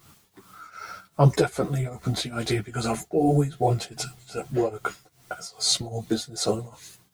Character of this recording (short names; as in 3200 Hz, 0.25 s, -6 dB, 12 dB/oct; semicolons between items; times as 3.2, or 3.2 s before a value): a quantiser's noise floor 10-bit, dither triangular; tremolo triangle 2.5 Hz, depth 90%; a shimmering, thickened sound